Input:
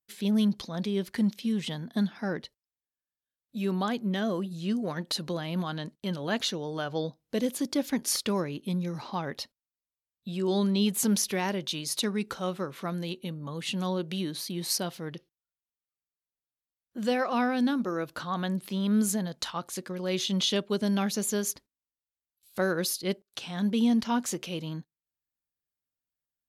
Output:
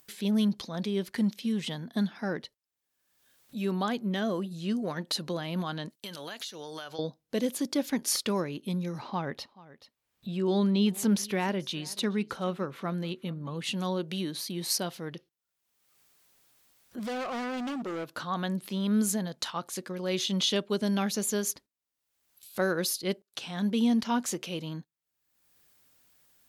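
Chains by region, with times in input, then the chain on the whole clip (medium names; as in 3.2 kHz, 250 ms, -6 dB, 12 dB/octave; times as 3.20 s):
5.90–6.99 s: tilt EQ +3.5 dB/octave + compression 12:1, threshold -35 dBFS
8.99–13.64 s: tone controls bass +3 dB, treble -7 dB + delay 430 ms -23 dB
16.99–18.16 s: high-pass 140 Hz 6 dB/octave + hard clipper -31.5 dBFS + loudspeaker Doppler distortion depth 0.21 ms
whole clip: bass shelf 86 Hz -8 dB; upward compressor, threshold -42 dBFS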